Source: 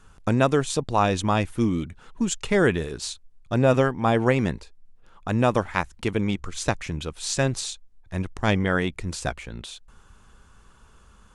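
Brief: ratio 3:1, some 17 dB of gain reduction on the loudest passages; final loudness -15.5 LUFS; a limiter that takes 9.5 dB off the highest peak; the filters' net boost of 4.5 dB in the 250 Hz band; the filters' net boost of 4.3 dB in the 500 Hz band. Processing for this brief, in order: peaking EQ 250 Hz +4.5 dB; peaking EQ 500 Hz +4 dB; compression 3:1, threshold -35 dBFS; trim +23.5 dB; peak limiter -4 dBFS

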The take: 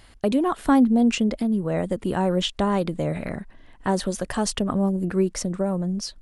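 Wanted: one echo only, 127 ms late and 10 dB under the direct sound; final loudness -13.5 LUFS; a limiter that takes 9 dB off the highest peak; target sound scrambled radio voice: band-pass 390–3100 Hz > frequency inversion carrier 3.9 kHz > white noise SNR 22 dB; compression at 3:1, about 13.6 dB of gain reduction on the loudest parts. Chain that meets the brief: compression 3:1, threshold -33 dBFS; peak limiter -26 dBFS; band-pass 390–3100 Hz; delay 127 ms -10 dB; frequency inversion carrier 3.9 kHz; white noise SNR 22 dB; trim +24 dB

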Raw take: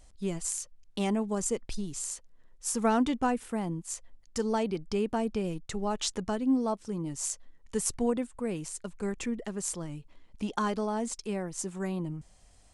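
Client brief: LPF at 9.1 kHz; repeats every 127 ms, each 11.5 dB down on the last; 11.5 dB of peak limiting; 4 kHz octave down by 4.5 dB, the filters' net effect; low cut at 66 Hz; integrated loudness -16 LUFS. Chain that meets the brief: high-pass 66 Hz; low-pass 9.1 kHz; peaking EQ 4 kHz -6 dB; peak limiter -27 dBFS; feedback delay 127 ms, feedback 27%, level -11.5 dB; trim +20.5 dB

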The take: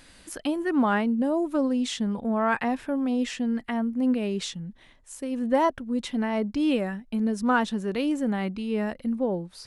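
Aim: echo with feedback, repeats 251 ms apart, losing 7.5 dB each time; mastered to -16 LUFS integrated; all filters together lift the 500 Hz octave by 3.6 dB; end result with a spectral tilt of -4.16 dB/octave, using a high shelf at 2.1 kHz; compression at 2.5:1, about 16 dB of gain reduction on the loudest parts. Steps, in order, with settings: peaking EQ 500 Hz +4 dB; treble shelf 2.1 kHz +6.5 dB; compression 2.5:1, threshold -39 dBFS; feedback delay 251 ms, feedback 42%, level -7.5 dB; trim +20 dB

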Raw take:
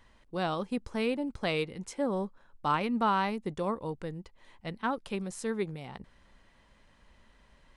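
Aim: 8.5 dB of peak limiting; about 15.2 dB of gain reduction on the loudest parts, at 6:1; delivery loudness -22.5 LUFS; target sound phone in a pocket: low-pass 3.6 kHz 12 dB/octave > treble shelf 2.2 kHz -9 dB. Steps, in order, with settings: compression 6:1, threshold -40 dBFS; peak limiter -37.5 dBFS; low-pass 3.6 kHz 12 dB/octave; treble shelf 2.2 kHz -9 dB; trim +26 dB

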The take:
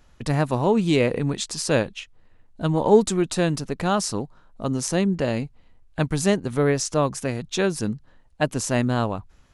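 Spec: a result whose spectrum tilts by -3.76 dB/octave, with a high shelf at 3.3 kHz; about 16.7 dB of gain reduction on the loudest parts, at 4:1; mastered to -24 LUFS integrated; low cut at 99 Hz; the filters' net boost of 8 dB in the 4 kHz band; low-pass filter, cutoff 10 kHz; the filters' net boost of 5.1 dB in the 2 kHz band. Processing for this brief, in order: high-pass 99 Hz; low-pass 10 kHz; peaking EQ 2 kHz +3.5 dB; treble shelf 3.3 kHz +4.5 dB; peaking EQ 4 kHz +6 dB; compression 4:1, threshold -30 dBFS; trim +8.5 dB

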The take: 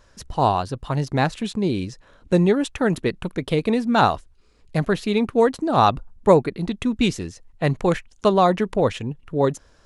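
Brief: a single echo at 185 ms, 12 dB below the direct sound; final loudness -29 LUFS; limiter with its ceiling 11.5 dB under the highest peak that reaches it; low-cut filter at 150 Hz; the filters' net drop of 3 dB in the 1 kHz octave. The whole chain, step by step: high-pass 150 Hz; peaking EQ 1 kHz -4 dB; peak limiter -14.5 dBFS; delay 185 ms -12 dB; trim -2.5 dB

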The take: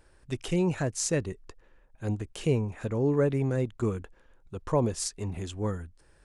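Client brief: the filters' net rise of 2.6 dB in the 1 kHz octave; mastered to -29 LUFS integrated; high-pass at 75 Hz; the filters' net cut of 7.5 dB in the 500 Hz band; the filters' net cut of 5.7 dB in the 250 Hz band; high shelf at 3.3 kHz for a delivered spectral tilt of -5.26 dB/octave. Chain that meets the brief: high-pass 75 Hz; peaking EQ 250 Hz -6 dB; peaking EQ 500 Hz -8.5 dB; peaking EQ 1 kHz +6 dB; treble shelf 3.3 kHz -3 dB; trim +5 dB

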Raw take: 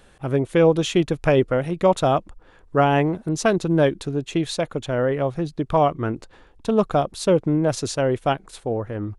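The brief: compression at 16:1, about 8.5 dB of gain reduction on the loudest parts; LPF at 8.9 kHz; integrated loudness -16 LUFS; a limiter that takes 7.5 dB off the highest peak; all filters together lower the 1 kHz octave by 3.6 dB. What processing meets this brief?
low-pass 8.9 kHz; peaking EQ 1 kHz -5.5 dB; compression 16:1, threshold -21 dBFS; trim +14 dB; peak limiter -5.5 dBFS

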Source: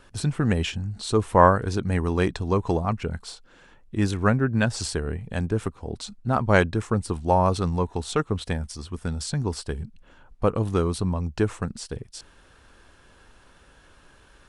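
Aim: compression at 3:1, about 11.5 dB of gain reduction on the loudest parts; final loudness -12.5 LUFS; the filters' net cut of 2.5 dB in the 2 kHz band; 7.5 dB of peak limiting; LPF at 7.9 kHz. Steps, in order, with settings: low-pass 7.9 kHz; peaking EQ 2 kHz -3.5 dB; compression 3:1, threshold -26 dBFS; trim +21 dB; peak limiter 0 dBFS

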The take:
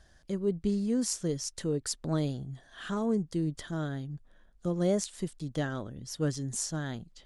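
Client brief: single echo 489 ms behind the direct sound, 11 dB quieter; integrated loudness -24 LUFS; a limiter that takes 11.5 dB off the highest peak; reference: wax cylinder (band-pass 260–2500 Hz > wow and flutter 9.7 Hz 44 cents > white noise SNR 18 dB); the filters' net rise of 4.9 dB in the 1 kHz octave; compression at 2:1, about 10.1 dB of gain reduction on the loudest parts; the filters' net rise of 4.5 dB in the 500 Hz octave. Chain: peaking EQ 500 Hz +5 dB; peaking EQ 1 kHz +5 dB; compression 2:1, threshold -39 dBFS; peak limiter -32 dBFS; band-pass 260–2500 Hz; delay 489 ms -11 dB; wow and flutter 9.7 Hz 44 cents; white noise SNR 18 dB; trim +20 dB

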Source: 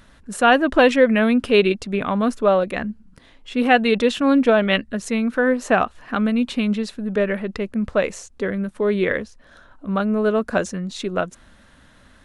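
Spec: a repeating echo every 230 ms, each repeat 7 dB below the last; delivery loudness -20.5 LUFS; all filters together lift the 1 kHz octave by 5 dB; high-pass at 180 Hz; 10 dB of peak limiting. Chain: high-pass 180 Hz; peaking EQ 1 kHz +7.5 dB; peak limiter -8 dBFS; feedback delay 230 ms, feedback 45%, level -7 dB; trim -0.5 dB

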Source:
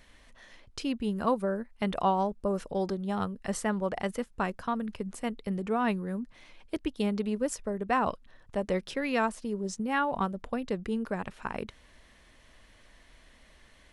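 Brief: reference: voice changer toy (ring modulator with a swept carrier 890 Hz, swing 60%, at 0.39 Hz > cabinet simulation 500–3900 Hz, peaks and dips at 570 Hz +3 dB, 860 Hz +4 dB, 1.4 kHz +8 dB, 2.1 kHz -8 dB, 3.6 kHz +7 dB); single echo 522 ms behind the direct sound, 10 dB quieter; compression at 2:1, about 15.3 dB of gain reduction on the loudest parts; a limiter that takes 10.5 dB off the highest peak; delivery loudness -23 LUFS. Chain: compression 2:1, threshold -51 dBFS; peak limiter -37.5 dBFS; delay 522 ms -10 dB; ring modulator with a swept carrier 890 Hz, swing 60%, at 0.39 Hz; cabinet simulation 500–3900 Hz, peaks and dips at 570 Hz +3 dB, 860 Hz +4 dB, 1.4 kHz +8 dB, 2.1 kHz -8 dB, 3.6 kHz +7 dB; trim +25.5 dB

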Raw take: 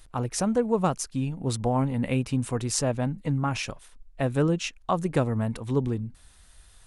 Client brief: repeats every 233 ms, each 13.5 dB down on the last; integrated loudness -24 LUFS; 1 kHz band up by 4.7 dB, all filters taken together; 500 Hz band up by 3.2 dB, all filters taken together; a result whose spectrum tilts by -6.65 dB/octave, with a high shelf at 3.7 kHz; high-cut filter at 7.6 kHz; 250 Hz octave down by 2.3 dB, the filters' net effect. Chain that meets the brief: low-pass 7.6 kHz; peaking EQ 250 Hz -4 dB; peaking EQ 500 Hz +3.5 dB; peaking EQ 1 kHz +5.5 dB; treble shelf 3.7 kHz -6 dB; feedback delay 233 ms, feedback 21%, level -13.5 dB; trim +2.5 dB

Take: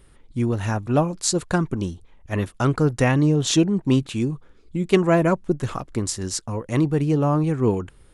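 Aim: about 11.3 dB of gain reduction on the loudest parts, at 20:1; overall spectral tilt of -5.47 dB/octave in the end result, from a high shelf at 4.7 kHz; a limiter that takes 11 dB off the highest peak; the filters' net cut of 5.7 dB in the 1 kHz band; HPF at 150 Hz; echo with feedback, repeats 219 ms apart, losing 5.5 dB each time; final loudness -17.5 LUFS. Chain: high-pass 150 Hz; peaking EQ 1 kHz -8 dB; treble shelf 4.7 kHz -5.5 dB; compression 20:1, threshold -24 dBFS; peak limiter -21 dBFS; feedback delay 219 ms, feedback 53%, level -5.5 dB; trim +13.5 dB

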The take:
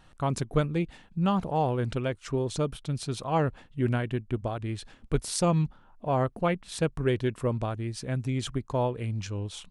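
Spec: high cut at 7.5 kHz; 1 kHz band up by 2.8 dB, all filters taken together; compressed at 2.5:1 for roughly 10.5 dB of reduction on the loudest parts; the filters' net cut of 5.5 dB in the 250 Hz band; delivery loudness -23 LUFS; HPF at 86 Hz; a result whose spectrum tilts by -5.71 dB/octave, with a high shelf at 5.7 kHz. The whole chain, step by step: high-pass 86 Hz; low-pass 7.5 kHz; peaking EQ 250 Hz -9 dB; peaking EQ 1 kHz +4.5 dB; treble shelf 5.7 kHz -6.5 dB; compression 2.5:1, threshold -37 dBFS; trim +16 dB

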